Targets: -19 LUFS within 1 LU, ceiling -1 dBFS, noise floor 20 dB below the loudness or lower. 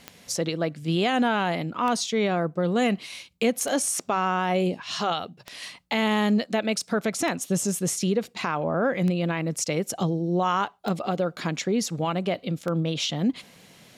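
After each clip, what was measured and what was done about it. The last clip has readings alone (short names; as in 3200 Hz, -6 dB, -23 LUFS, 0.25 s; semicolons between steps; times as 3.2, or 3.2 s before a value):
clicks 8; loudness -26.0 LUFS; peak -12.0 dBFS; loudness target -19.0 LUFS
-> de-click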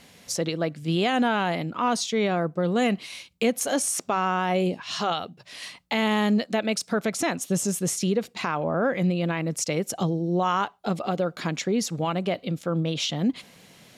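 clicks 0; loudness -26.0 LUFS; peak -12.0 dBFS; loudness target -19.0 LUFS
-> gain +7 dB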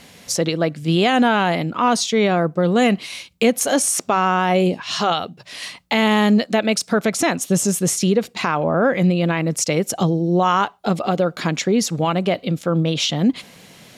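loudness -19.0 LUFS; peak -5.0 dBFS; noise floor -47 dBFS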